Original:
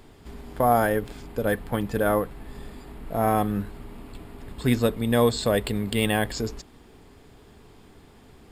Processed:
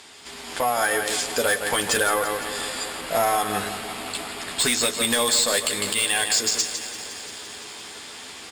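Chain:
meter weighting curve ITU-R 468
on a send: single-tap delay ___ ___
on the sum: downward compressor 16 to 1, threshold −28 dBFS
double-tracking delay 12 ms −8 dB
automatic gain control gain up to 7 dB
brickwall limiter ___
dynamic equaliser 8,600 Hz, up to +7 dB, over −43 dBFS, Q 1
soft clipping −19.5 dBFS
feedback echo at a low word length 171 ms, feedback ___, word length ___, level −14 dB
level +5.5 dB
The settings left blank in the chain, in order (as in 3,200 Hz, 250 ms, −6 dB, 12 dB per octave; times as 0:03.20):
152 ms, −14 dB, −9.5 dBFS, 80%, 10 bits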